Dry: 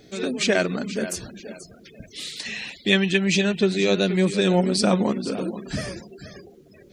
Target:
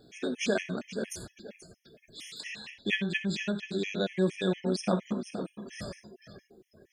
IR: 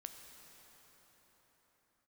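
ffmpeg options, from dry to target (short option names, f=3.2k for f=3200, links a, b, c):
-filter_complex "[0:a]asettb=1/sr,asplit=3[a][b][c];[a]atrim=end=2.674[d];[b]atrim=start=2.67:end=5.02,asetpts=PTS-STARTPTS,afade=t=in:d=0.004:c=qsin,afade=t=out:st=2.346:d=0.004:c=qsin,highshelf=f=5.8k:g=-7.5[e];[c]atrim=start=5.016[f];[d][e]acrossfade=d=0.004:c1=hsin:c2=qsin[g];[g][f]acrossfade=d=0.004:c1=qsin:c2=hsin[h];[1:a]atrim=start_sample=2205,atrim=end_sample=6174,asetrate=57330,aresample=44100[i];[h][i]afir=irnorm=-1:irlink=0,afftfilt=real='re*gt(sin(2*PI*4.3*pts/sr)*(1-2*mod(floor(b*sr/1024/1700),2)),0)':imag='im*gt(sin(2*PI*4.3*pts/sr)*(1-2*mod(floor(b*sr/1024/1700),2)),0)':win_size=1024:overlap=0.75,volume=1.5dB"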